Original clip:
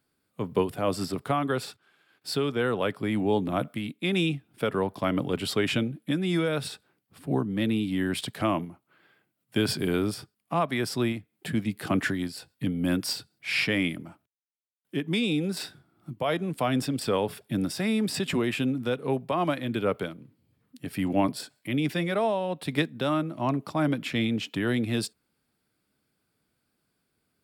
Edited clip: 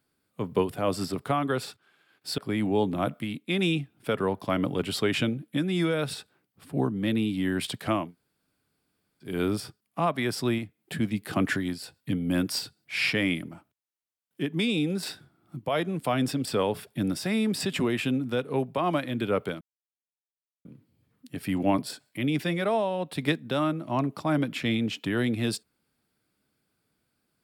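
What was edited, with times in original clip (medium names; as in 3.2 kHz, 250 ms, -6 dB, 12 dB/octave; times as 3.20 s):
2.38–2.92 s: delete
8.58–9.86 s: room tone, crossfade 0.24 s
20.15 s: insert silence 1.04 s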